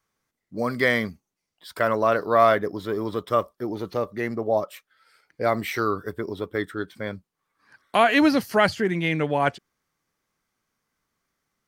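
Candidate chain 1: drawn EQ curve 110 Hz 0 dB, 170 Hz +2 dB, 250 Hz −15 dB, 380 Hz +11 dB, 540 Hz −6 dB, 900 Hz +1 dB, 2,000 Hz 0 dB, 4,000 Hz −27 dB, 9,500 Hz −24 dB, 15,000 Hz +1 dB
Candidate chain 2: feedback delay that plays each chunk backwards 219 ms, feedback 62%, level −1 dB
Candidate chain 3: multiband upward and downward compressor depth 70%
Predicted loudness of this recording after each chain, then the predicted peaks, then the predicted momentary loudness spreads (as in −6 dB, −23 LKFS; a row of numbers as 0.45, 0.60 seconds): −23.5, −21.5, −24.5 LKFS; −5.5, −3.0, −6.0 dBFS; 10, 15, 12 LU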